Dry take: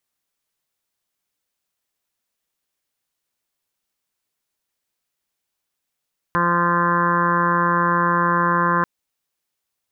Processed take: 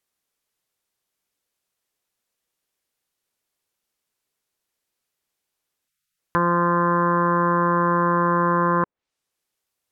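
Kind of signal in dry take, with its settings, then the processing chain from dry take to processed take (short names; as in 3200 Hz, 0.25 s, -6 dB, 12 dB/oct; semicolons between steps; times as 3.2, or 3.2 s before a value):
steady additive tone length 2.49 s, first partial 173 Hz, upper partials -4/-4.5/-16.5/-10/5/-2/-4/-2.5/-4.5/-18.5 dB, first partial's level -23.5 dB
spectral delete 5.88–6.18, 210–1200 Hz; treble ducked by the level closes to 1200 Hz, closed at -18.5 dBFS; bell 430 Hz +3.5 dB 0.71 oct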